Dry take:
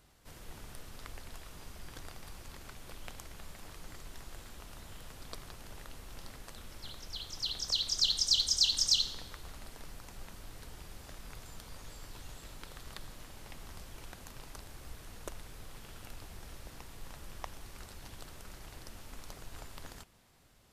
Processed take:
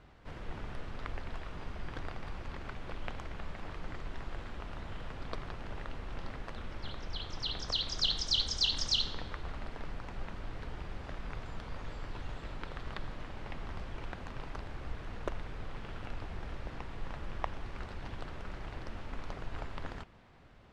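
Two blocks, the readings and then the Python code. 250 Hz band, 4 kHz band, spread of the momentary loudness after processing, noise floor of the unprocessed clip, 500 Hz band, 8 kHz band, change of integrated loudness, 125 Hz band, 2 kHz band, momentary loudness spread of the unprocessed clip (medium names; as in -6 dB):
+7.5 dB, -2.0 dB, 15 LU, -53 dBFS, +7.5 dB, -10.0 dB, -9.5 dB, +7.5 dB, +5.5 dB, 23 LU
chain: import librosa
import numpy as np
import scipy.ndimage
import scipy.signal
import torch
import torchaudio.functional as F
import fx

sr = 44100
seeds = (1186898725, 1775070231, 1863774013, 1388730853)

y = scipy.signal.sosfilt(scipy.signal.butter(2, 2400.0, 'lowpass', fs=sr, output='sos'), x)
y = y * librosa.db_to_amplitude(7.5)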